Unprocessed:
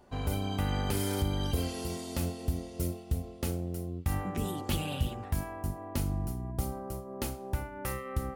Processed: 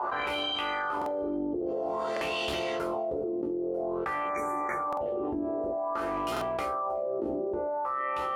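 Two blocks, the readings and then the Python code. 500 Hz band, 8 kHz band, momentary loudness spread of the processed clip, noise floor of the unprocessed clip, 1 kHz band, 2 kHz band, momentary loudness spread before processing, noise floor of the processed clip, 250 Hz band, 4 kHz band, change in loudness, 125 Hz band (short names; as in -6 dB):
+9.5 dB, -10.0 dB, 2 LU, -45 dBFS, +10.0 dB, +8.5 dB, 6 LU, -32 dBFS, +1.5 dB, +5.0 dB, +3.5 dB, -18.0 dB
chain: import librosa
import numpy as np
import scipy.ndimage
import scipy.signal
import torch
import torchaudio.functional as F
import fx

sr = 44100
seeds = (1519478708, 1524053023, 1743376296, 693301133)

p1 = fx.octave_divider(x, sr, octaves=1, level_db=2.0)
p2 = fx.spec_box(p1, sr, start_s=1.36, length_s=0.31, low_hz=890.0, high_hz=10000.0, gain_db=-12)
p3 = fx.wah_lfo(p2, sr, hz=0.51, low_hz=320.0, high_hz=3000.0, q=4.1)
p4 = fx.band_shelf(p3, sr, hz=650.0, db=10.5, octaves=2.4)
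p5 = fx.comb_fb(p4, sr, f0_hz=73.0, decay_s=0.23, harmonics='all', damping=0.0, mix_pct=80)
p6 = p5 + fx.echo_single(p5, sr, ms=368, db=-21.0, dry=0)
p7 = fx.spec_erase(p6, sr, start_s=4.28, length_s=0.73, low_hz=2400.0, high_hz=5700.0)
p8 = fx.high_shelf(p7, sr, hz=7000.0, db=-4.0)
p9 = fx.doubler(p8, sr, ms=17.0, db=-7.0)
p10 = fx.buffer_glitch(p9, sr, at_s=(0.97, 2.12, 4.88, 6.32), block=2048, repeats=1)
y = fx.env_flatten(p10, sr, amount_pct=100)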